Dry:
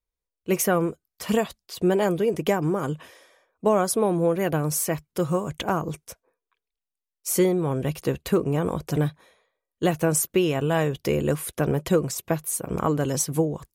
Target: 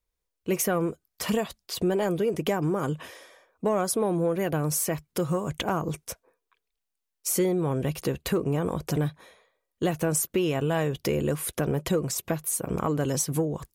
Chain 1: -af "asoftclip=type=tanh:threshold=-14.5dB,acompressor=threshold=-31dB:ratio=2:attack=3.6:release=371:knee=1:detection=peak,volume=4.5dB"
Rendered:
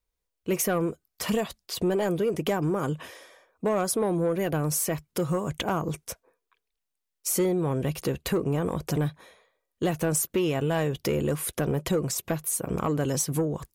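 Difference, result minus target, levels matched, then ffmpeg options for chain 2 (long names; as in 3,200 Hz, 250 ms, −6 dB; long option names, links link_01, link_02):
soft clipping: distortion +10 dB
-af "asoftclip=type=tanh:threshold=-8.5dB,acompressor=threshold=-31dB:ratio=2:attack=3.6:release=371:knee=1:detection=peak,volume=4.5dB"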